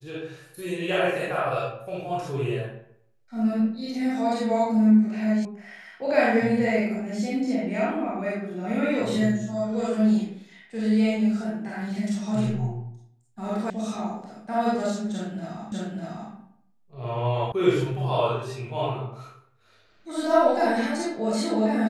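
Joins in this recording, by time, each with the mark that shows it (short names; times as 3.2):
5.45 sound cut off
13.7 sound cut off
15.72 repeat of the last 0.6 s
17.52 sound cut off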